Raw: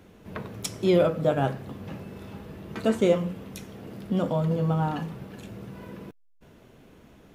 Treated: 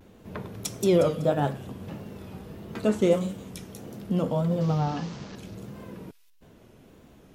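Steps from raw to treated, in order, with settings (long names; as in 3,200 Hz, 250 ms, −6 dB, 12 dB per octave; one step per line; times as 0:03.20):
0:04.61–0:05.36: linear delta modulator 32 kbit/s, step −36.5 dBFS
parametric band 1,900 Hz −3 dB 1.8 octaves
delay with a high-pass on its return 185 ms, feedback 34%, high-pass 4,700 Hz, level −3 dB
pitch vibrato 1.6 Hz 93 cents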